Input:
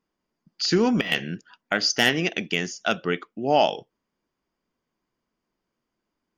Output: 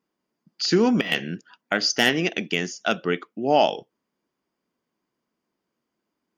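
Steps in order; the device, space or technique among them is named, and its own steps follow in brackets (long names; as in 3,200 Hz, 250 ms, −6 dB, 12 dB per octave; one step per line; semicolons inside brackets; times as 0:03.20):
filter by subtraction (in parallel: low-pass filter 240 Hz 12 dB per octave + polarity inversion)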